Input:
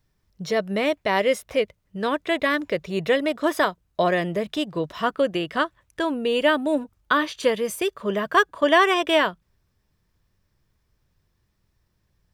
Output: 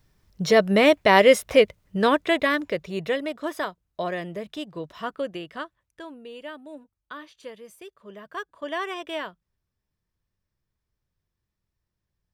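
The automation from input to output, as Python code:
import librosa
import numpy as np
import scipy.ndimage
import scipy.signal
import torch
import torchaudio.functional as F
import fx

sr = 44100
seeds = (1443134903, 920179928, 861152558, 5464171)

y = fx.gain(x, sr, db=fx.line((1.98, 6.0), (2.45, 0.0), (3.51, -8.0), (5.26, -8.0), (6.4, -19.0), (8.03, -19.0), (8.84, -12.5)))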